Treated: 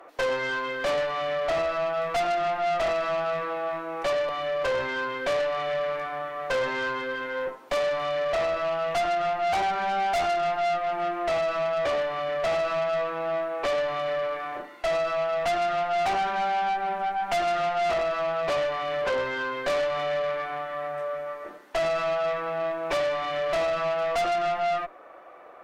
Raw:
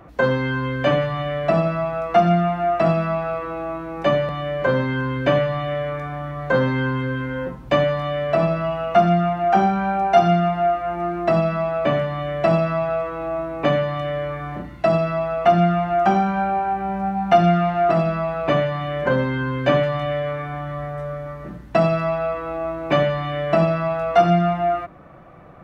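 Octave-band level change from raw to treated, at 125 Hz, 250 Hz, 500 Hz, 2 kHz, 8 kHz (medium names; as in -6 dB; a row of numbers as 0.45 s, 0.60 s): -23.0 dB, -18.5 dB, -5.5 dB, -2.5 dB, no reading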